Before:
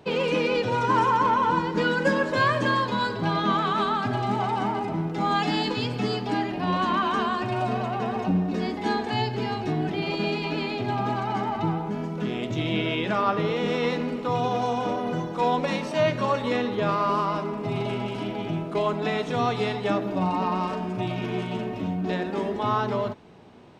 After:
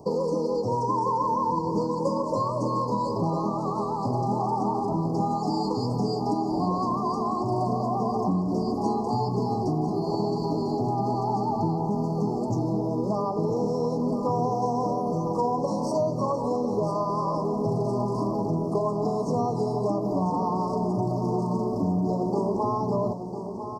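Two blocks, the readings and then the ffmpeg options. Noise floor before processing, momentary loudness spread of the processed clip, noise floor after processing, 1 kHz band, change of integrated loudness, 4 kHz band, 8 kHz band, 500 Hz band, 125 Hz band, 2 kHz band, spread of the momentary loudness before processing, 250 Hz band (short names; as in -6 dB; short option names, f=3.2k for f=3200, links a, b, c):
-33 dBFS, 1 LU, -29 dBFS, -1.5 dB, -1.0 dB, -12.5 dB, +0.5 dB, +0.5 dB, +1.0 dB, under -40 dB, 6 LU, +1.0 dB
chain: -af "acompressor=threshold=-28dB:ratio=6,asuperstop=centerf=2300:order=20:qfactor=0.66,aecho=1:1:999|1998|2997|3996|4995|5994:0.335|0.171|0.0871|0.0444|0.0227|0.0116,volume=5.5dB"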